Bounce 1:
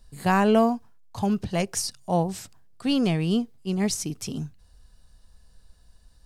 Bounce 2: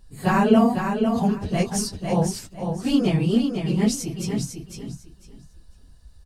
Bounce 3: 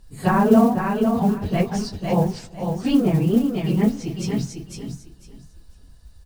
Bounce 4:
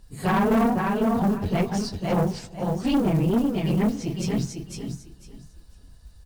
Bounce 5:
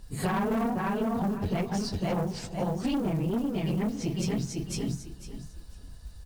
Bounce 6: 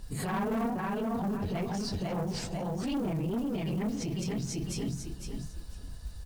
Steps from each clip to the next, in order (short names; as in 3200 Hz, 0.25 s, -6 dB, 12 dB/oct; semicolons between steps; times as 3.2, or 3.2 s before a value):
phase scrambler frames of 50 ms; low shelf 340 Hz +4 dB; on a send: feedback echo 0.501 s, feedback 20%, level -6 dB
treble ducked by the level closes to 1500 Hz, closed at -16 dBFS; modulation noise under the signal 29 dB; on a send at -19 dB: reverb RT60 1.8 s, pre-delay 5 ms; on the sum: gain +2 dB
tube stage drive 18 dB, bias 0.45; gain +1.5 dB
compressor, threshold -30 dBFS, peak gain reduction 12 dB; gain +3.5 dB
limiter -29 dBFS, peak gain reduction 11 dB; gain +3 dB